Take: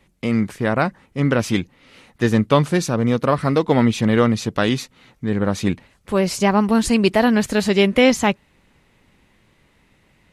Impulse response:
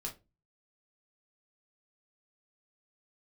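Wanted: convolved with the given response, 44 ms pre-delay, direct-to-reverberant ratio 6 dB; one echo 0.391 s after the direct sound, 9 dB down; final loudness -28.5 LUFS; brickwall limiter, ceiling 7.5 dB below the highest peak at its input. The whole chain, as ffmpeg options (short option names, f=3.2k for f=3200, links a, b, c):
-filter_complex "[0:a]alimiter=limit=-8.5dB:level=0:latency=1,aecho=1:1:391:0.355,asplit=2[a][b];[1:a]atrim=start_sample=2205,adelay=44[c];[b][c]afir=irnorm=-1:irlink=0,volume=-5dB[d];[a][d]amix=inputs=2:normalize=0,volume=-9dB"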